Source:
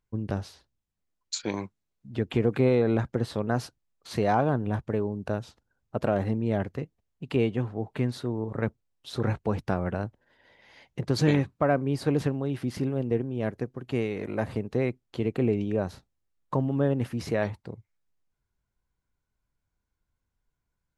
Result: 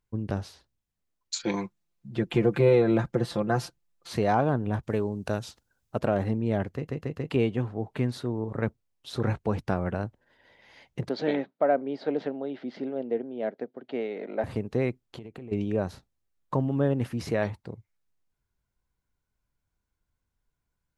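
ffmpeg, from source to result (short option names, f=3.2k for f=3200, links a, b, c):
-filter_complex "[0:a]asettb=1/sr,asplit=3[a][b][c];[a]atrim=end=1.394[d];[b]atrim=start=1.39:end=4.11,asetpts=PTS-STARTPTS,afade=t=in:d=0.004:c=qsin,afade=t=out:st=2.716:d=0.004:c=qsin,aecho=1:1:5.8:0.76,atrim=end_sample=119952[e];[c]atrim=start=4.106[f];[d][e]acrossfade=d=0.004:c1=hsin:c2=qsin[g];[g][f]acrossfade=d=0.004:c1=qsin:c2=hsin,asettb=1/sr,asplit=3[h][i][j];[h]atrim=end=4.834[k];[i]atrim=start=4.83:end=5.99,asetpts=PTS-STARTPTS,afade=t=in:d=0.004:c=qsin,afade=t=out:st=1.156:d=0.004:c=qsin,highshelf=f=2.9k:g=11[l];[j]atrim=start=5.986[m];[k][l]acrossfade=d=0.004:c1=hsin:c2=qsin[n];[n][m]acrossfade=d=0.004:c1=qsin:c2=hsin,asettb=1/sr,asplit=3[o][p][q];[o]atrim=end=11.094[r];[p]atrim=start=11.09:end=14.44,asetpts=PTS-STARTPTS,afade=t=in:d=0.004:c=qsin,afade=t=out:st=3.346:d=0.004:c=qsin,highpass=f=250:w=0.5412,highpass=f=250:w=1.3066,equalizer=f=330:t=q:w=4:g=-6,equalizer=f=640:t=q:w=4:g=5,equalizer=f=1.1k:t=q:w=4:g=-10,equalizer=f=1.7k:t=q:w=4:g=-3,equalizer=f=2.6k:t=q:w=4:g=-8,lowpass=f=3.8k:w=0.5412,lowpass=f=3.8k:w=1.3066[s];[q]atrim=start=14.436[t];[r][s]acrossfade=d=0.004:c1=hsin:c2=qsin[u];[u][t]acrossfade=d=0.004:c1=qsin:c2=hsin,asplit=3[v][w][x];[v]afade=t=out:st=15.02:d=0.02[y];[w]acompressor=threshold=-37dB:ratio=16:attack=3.2:release=140:knee=1:detection=peak,afade=t=in:st=15.02:d=0.02,afade=t=out:st=15.51:d=0.02[z];[x]afade=t=in:st=15.51:d=0.02[aa];[y][z][aa]amix=inputs=3:normalize=0,asplit=5[ab][ac][ad][ae][af];[ab]atrim=end=6.882[ag];[ac]atrim=start=6.738:end=6.882[ah];[ad]atrim=start=6.738:end=6.882[ai];[ae]atrim=start=6.738:end=6.882[aj];[af]atrim=start=7.298[ak];[ag][ah]acrossfade=d=0.004:c1=hsin:c2=hsin[al];[al][ai]acrossfade=d=0.004:c1=hsin:c2=hsin[am];[am][aj]acrossfade=d=0.004:c1=hsin:c2=hsin[an];[an][ak]acrossfade=d=0.004:c1=hsin:c2=hsin"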